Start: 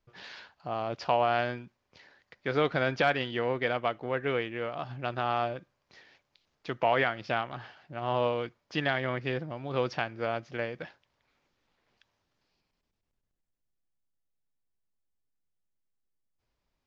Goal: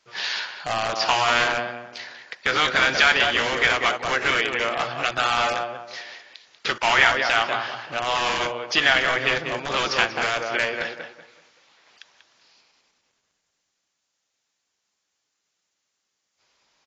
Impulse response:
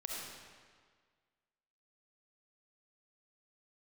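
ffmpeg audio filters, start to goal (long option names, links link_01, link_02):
-filter_complex "[0:a]aemphasis=mode=production:type=75kf,asplit=2[link_01][link_02];[link_02]acompressor=threshold=-38dB:ratio=6,volume=2.5dB[link_03];[link_01][link_03]amix=inputs=2:normalize=0,bandpass=frequency=1300:width_type=q:width=0.57:csg=0,asplit=2[link_04][link_05];[link_05]adelay=190,lowpass=frequency=2000:poles=1,volume=-6dB,asplit=2[link_06][link_07];[link_07]adelay=190,lowpass=frequency=2000:poles=1,volume=0.31,asplit=2[link_08][link_09];[link_09]adelay=190,lowpass=frequency=2000:poles=1,volume=0.31,asplit=2[link_10][link_11];[link_11]adelay=190,lowpass=frequency=2000:poles=1,volume=0.31[link_12];[link_04][link_06][link_08][link_10][link_12]amix=inputs=5:normalize=0,acrossover=split=790[link_13][link_14];[link_13]aeval=exprs='(mod(31.6*val(0)+1,2)-1)/31.6':channel_layout=same[link_15];[link_14]crystalizer=i=2.5:c=0[link_16];[link_15][link_16]amix=inputs=2:normalize=0,volume=7dB" -ar 16000 -c:a aac -b:a 24k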